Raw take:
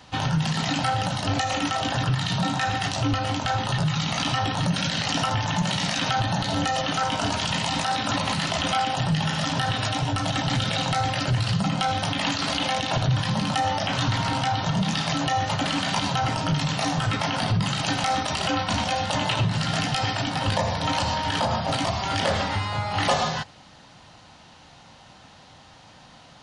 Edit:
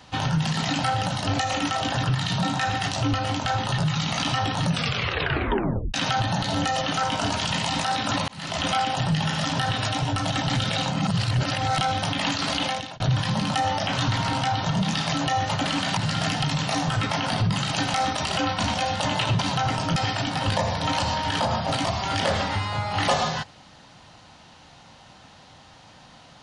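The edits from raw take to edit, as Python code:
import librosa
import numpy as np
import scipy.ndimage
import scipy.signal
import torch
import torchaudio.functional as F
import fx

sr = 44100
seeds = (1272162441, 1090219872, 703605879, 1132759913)

y = fx.edit(x, sr, fx.tape_stop(start_s=4.67, length_s=1.27),
    fx.fade_in_span(start_s=8.28, length_s=0.36),
    fx.reverse_span(start_s=10.91, length_s=0.89),
    fx.fade_out_span(start_s=12.64, length_s=0.36),
    fx.swap(start_s=15.97, length_s=0.57, other_s=19.49, other_length_s=0.47), tone=tone)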